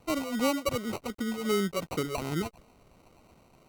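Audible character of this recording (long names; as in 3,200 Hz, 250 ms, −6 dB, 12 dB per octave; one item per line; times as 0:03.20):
a quantiser's noise floor 10 bits, dither none
phaser sweep stages 12, 2.7 Hz, lowest notch 270–3,200 Hz
aliases and images of a low sample rate 1,700 Hz, jitter 0%
Opus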